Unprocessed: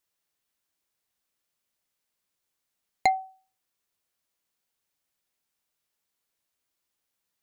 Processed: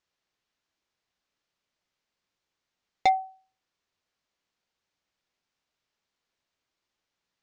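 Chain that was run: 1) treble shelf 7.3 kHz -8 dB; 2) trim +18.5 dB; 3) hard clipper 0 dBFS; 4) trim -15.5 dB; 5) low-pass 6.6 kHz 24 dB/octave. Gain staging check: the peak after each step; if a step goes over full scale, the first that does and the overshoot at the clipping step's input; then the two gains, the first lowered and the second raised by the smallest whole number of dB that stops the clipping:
-9.0 dBFS, +9.5 dBFS, 0.0 dBFS, -15.5 dBFS, -14.5 dBFS; step 2, 9.5 dB; step 2 +8.5 dB, step 4 -5.5 dB

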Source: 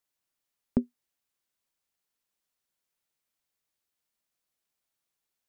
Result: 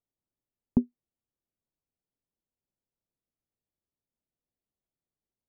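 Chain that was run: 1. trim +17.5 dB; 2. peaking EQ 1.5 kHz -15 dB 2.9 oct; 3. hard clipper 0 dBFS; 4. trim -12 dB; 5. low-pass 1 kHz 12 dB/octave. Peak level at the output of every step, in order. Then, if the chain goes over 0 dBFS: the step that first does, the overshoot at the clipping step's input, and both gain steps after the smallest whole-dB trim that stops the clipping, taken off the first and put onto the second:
+6.0 dBFS, +3.0 dBFS, 0.0 dBFS, -12.0 dBFS, -12.0 dBFS; step 1, 3.0 dB; step 1 +14.5 dB, step 4 -9 dB

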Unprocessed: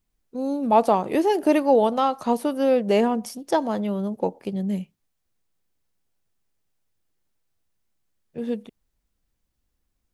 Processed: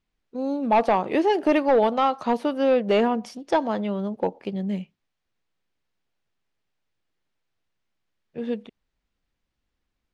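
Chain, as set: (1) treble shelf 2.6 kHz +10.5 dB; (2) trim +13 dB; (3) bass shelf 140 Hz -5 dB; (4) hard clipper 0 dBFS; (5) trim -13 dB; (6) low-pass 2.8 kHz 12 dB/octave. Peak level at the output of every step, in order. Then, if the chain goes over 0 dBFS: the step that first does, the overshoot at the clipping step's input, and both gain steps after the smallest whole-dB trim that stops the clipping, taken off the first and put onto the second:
-4.0 dBFS, +9.0 dBFS, +8.5 dBFS, 0.0 dBFS, -13.0 dBFS, -12.5 dBFS; step 2, 8.5 dB; step 2 +4 dB, step 5 -4 dB

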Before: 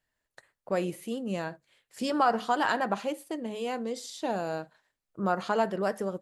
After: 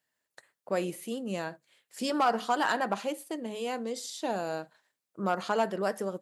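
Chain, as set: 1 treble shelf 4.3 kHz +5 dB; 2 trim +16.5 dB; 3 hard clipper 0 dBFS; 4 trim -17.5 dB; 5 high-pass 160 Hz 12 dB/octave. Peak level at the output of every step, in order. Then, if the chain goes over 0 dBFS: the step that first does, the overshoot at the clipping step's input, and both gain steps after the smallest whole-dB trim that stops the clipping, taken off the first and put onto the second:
-12.0 dBFS, +4.5 dBFS, 0.0 dBFS, -17.5 dBFS, -15.0 dBFS; step 2, 4.5 dB; step 2 +11.5 dB, step 4 -12.5 dB

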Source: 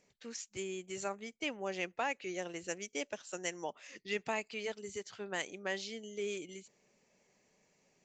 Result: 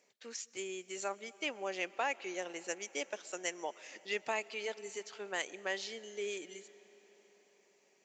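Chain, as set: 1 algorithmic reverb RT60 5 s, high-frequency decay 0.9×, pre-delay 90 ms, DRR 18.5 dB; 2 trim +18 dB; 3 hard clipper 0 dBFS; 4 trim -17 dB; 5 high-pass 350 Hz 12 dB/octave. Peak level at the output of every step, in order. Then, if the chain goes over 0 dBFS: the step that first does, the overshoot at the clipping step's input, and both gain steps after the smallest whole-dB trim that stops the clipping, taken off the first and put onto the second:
-21.5 dBFS, -3.5 dBFS, -3.5 dBFS, -20.5 dBFS, -22.0 dBFS; nothing clips

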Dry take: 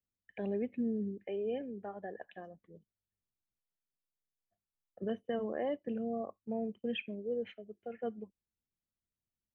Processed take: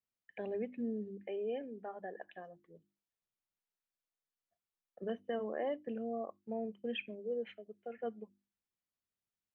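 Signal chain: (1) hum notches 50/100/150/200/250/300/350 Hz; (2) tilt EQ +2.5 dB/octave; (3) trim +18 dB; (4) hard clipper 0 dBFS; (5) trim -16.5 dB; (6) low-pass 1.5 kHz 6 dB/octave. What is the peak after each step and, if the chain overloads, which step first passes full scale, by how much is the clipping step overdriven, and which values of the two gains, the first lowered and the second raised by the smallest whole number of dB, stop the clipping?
-24.5 dBFS, -24.0 dBFS, -6.0 dBFS, -6.0 dBFS, -22.5 dBFS, -26.5 dBFS; nothing clips

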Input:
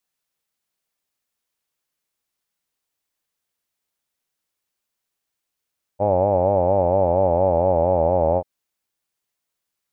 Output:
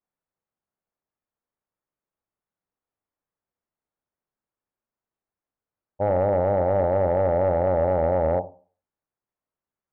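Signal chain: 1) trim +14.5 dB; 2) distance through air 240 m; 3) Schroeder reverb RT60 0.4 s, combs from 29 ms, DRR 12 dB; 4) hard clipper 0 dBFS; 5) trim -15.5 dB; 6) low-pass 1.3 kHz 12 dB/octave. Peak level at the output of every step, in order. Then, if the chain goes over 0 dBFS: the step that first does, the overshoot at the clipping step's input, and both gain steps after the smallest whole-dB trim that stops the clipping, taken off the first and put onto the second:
+7.0 dBFS, +6.0 dBFS, +7.5 dBFS, 0.0 dBFS, -15.5 dBFS, -15.0 dBFS; step 1, 7.5 dB; step 1 +6.5 dB, step 5 -7.5 dB

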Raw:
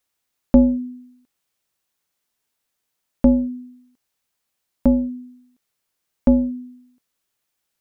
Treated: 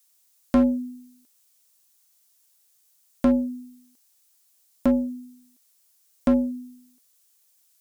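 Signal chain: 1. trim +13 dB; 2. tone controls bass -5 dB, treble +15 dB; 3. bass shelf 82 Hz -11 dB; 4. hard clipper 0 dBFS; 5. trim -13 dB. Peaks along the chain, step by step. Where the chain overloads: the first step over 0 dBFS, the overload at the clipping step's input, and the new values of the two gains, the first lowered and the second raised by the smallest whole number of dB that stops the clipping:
+9.0 dBFS, +8.0 dBFS, +8.0 dBFS, 0.0 dBFS, -13.0 dBFS; step 1, 8.0 dB; step 1 +5 dB, step 5 -5 dB

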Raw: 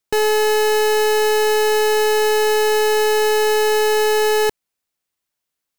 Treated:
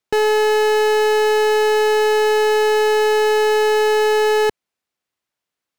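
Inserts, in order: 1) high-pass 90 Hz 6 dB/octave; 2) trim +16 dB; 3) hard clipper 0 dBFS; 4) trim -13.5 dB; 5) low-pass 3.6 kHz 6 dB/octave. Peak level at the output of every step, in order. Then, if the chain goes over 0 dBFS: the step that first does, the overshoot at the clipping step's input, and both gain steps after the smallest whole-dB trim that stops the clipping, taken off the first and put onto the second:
-12.0 dBFS, +4.0 dBFS, 0.0 dBFS, -13.5 dBFS, -13.5 dBFS; step 2, 4.0 dB; step 2 +12 dB, step 4 -9.5 dB

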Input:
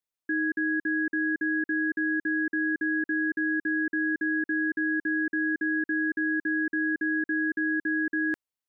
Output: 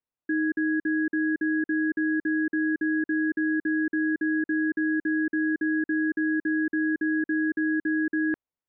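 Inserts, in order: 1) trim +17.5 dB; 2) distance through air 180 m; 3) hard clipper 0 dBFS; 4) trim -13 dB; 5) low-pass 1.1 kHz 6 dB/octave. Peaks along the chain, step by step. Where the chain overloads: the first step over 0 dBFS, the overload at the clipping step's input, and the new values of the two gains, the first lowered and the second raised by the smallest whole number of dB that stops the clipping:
-3.0 dBFS, -4.0 dBFS, -4.0 dBFS, -17.0 dBFS, -19.5 dBFS; nothing clips

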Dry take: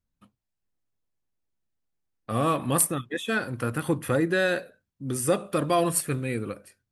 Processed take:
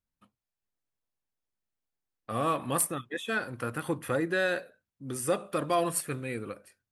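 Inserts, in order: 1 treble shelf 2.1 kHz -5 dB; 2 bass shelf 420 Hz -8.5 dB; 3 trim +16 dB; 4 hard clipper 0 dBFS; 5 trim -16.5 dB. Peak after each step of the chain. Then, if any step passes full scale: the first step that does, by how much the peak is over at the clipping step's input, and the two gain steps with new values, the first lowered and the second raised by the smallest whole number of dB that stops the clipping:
-11.5 dBFS, -12.5 dBFS, +3.5 dBFS, 0.0 dBFS, -16.5 dBFS; step 3, 3.5 dB; step 3 +12 dB, step 5 -12.5 dB

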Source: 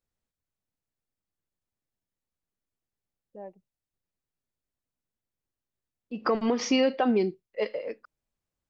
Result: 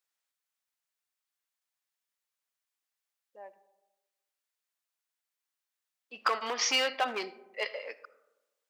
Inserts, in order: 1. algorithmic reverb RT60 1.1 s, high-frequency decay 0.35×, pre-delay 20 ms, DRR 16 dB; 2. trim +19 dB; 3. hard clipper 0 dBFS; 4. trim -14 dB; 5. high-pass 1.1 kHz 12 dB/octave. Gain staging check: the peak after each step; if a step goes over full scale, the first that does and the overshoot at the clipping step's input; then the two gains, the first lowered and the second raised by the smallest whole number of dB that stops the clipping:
-13.5 dBFS, +5.5 dBFS, 0.0 dBFS, -14.0 dBFS, -13.5 dBFS; step 2, 5.5 dB; step 2 +13 dB, step 4 -8 dB

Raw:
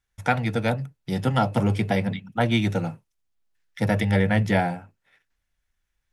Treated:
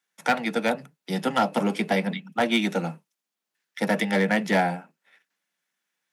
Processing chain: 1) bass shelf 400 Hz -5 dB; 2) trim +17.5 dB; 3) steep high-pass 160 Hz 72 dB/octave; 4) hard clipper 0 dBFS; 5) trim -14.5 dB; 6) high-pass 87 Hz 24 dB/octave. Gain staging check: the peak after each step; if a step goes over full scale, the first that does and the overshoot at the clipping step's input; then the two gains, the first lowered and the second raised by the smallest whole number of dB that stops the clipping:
-7.5 dBFS, +10.0 dBFS, +9.5 dBFS, 0.0 dBFS, -14.5 dBFS, -10.0 dBFS; step 2, 9.5 dB; step 2 +7.5 dB, step 5 -4.5 dB

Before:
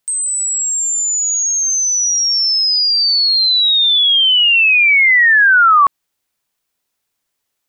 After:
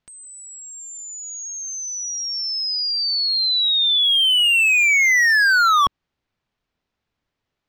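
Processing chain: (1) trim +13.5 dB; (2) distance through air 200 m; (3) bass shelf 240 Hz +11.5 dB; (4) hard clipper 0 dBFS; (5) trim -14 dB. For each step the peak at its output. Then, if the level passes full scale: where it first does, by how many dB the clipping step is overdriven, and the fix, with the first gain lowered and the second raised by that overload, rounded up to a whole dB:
+8.0 dBFS, +7.0 dBFS, +7.5 dBFS, 0.0 dBFS, -14.0 dBFS; step 1, 7.5 dB; step 1 +5.5 dB, step 5 -6 dB

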